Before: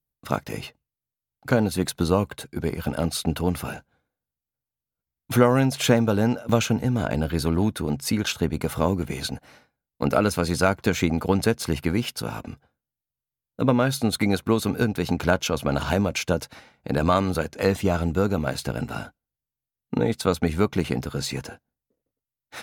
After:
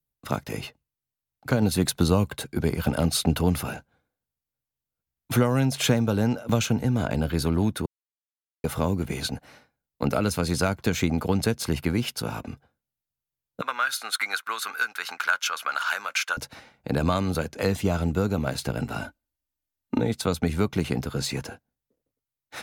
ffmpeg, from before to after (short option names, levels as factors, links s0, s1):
-filter_complex "[0:a]asettb=1/sr,asplit=3[s0][s1][s2];[s0]atrim=end=13.614[s3];[s1]atrim=start=13.61:end=16.37,asetpts=PTS-STARTPTS,afade=t=in:d=0.004:c=qsin,afade=t=out:st=2.756:d=0.004:c=qsin,highpass=f=1400:t=q:w=3.4[s4];[s2]atrim=start=16.366[s5];[s3][s4]acrossfade=d=0.004:c1=hsin:c2=qsin[s6];[s6][s5]acrossfade=d=0.004:c1=qsin:c2=hsin,asettb=1/sr,asplit=3[s7][s8][s9];[s7]atrim=end=19.014[s10];[s8]atrim=start=19.01:end=20.01,asetpts=PTS-STARTPTS,afade=t=in:d=0.004:c=qsin,afade=t=out:st=0.996:d=0.004:c=qsin,aecho=1:1:3.3:0.78,atrim=end_sample=44100[s11];[s9]atrim=start=20.006[s12];[s10][s11]acrossfade=d=0.004:c1=hsin:c2=qsin[s13];[s13][s12]acrossfade=d=0.004:c1=qsin:c2=hsin,asplit=5[s14][s15][s16][s17][s18];[s14]atrim=end=1.622[s19];[s15]atrim=start=1.618:end=3.632,asetpts=PTS-STARTPTS,volume=1.5[s20];[s16]atrim=start=3.628:end=7.86,asetpts=PTS-STARTPTS,afade=t=out:st=4.228:d=0.004:c=hsin[s21];[s17]atrim=start=7.86:end=8.64,asetpts=PTS-STARTPTS,volume=0[s22];[s18]atrim=start=8.64,asetpts=PTS-STARTPTS,afade=t=in:d=0.004:c=hsin[s23];[s19][s20]acrossfade=d=0.004:c1=hsin:c2=hsin[s24];[s21][s22][s23]concat=n=3:v=0:a=1[s25];[s24][s25]acrossfade=d=0.004:c1=hsin:c2=hsin,acrossover=split=210|3000[s26][s27][s28];[s27]acompressor=threshold=0.0501:ratio=2[s29];[s26][s29][s28]amix=inputs=3:normalize=0"